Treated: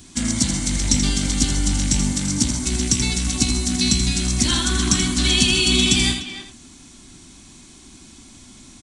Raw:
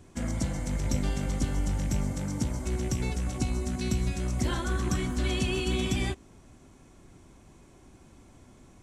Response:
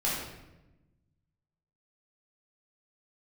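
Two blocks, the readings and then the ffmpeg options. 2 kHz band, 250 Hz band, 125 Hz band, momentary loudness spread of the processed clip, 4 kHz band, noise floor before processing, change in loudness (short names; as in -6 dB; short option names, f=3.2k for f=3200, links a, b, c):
+12.5 dB, +10.0 dB, +6.0 dB, 6 LU, +20.0 dB, -55 dBFS, +11.5 dB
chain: -filter_complex "[0:a]equalizer=f=125:t=o:w=1:g=-3,equalizer=f=250:t=o:w=1:g=8,equalizer=f=500:t=o:w=1:g=-10,equalizer=f=4k:t=o:w=1:g=9,asplit=2[a][b];[b]aecho=0:1:82:0.398[c];[a][c]amix=inputs=2:normalize=0,aresample=22050,aresample=44100,crystalizer=i=3.5:c=0,asplit=2[d][e];[e]adelay=300,highpass=300,lowpass=3.4k,asoftclip=type=hard:threshold=-15.5dB,volume=-10dB[f];[d][f]amix=inputs=2:normalize=0,volume=5dB"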